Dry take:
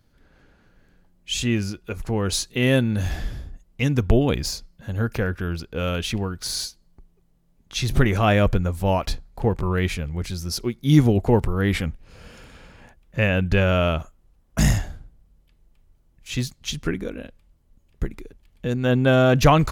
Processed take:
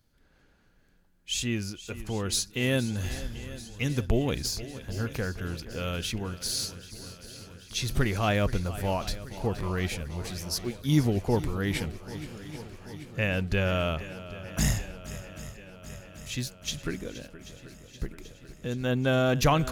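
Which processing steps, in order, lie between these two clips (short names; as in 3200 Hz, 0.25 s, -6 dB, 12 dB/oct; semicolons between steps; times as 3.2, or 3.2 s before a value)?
high shelf 3500 Hz +7 dB; on a send: swung echo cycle 0.785 s, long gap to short 1.5:1, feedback 65%, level -15.5 dB; on the sum: gain -8 dB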